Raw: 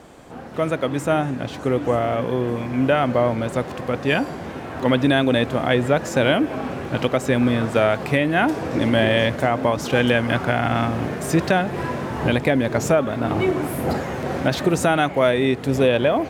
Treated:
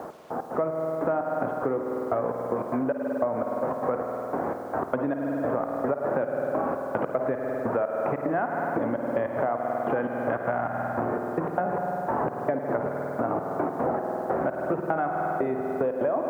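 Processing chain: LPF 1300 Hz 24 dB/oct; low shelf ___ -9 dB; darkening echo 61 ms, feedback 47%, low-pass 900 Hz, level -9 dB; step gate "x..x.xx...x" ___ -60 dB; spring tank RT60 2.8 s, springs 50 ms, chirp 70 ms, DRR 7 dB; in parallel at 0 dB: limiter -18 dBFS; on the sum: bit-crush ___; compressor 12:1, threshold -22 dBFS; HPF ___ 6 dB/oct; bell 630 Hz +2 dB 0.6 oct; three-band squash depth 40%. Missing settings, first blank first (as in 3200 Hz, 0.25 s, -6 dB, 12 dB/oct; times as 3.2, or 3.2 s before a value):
360 Hz, 149 bpm, 10-bit, 220 Hz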